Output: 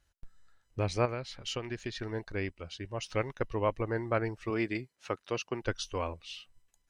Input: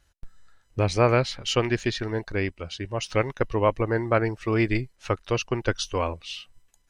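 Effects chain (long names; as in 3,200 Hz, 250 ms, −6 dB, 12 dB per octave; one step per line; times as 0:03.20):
0:01.05–0:01.96: downward compressor 6 to 1, threshold −25 dBFS, peak gain reduction 9.5 dB
0:04.50–0:05.62: high-pass filter 160 Hz 12 dB per octave
level −8 dB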